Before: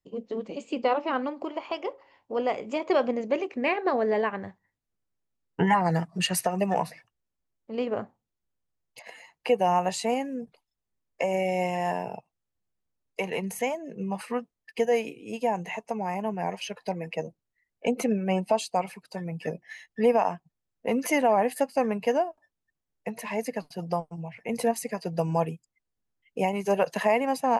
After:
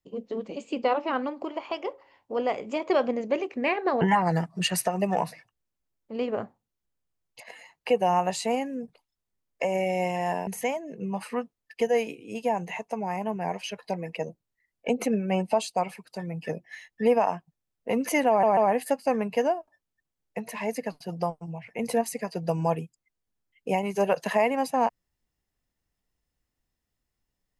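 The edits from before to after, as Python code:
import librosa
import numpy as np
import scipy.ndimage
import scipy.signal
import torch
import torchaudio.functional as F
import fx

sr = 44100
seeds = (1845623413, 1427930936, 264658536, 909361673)

y = fx.edit(x, sr, fx.cut(start_s=4.01, length_s=1.59),
    fx.cut(start_s=12.06, length_s=1.39),
    fx.stutter(start_s=21.27, slice_s=0.14, count=3), tone=tone)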